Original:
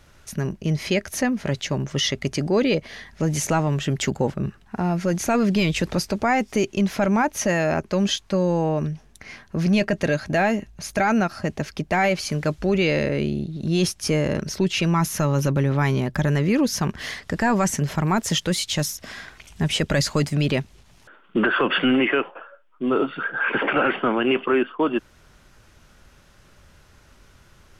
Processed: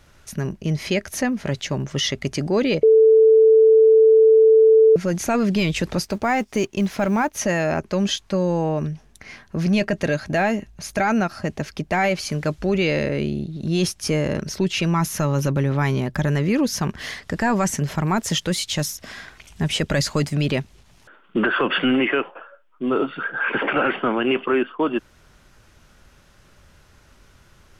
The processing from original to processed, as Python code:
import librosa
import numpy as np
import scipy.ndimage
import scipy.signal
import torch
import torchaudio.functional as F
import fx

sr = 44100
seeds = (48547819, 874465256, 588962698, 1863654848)

y = fx.law_mismatch(x, sr, coded='A', at=(6.04, 7.38))
y = fx.edit(y, sr, fx.bleep(start_s=2.83, length_s=2.13, hz=442.0, db=-9.0), tone=tone)